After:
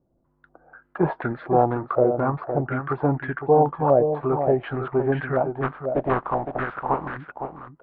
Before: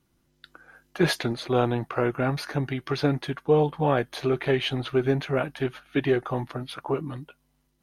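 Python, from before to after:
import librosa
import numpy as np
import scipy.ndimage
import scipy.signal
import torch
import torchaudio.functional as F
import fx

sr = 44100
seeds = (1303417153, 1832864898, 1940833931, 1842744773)

y = fx.spec_flatten(x, sr, power=0.37, at=(5.62, 7.16), fade=0.02)
y = fx.air_absorb(y, sr, metres=280.0)
y = y + 10.0 ** (-8.0 / 20.0) * np.pad(y, (int(511 * sr / 1000.0), 0))[:len(y)]
y = fx.filter_held_lowpass(y, sr, hz=4.1, low_hz=620.0, high_hz=1600.0)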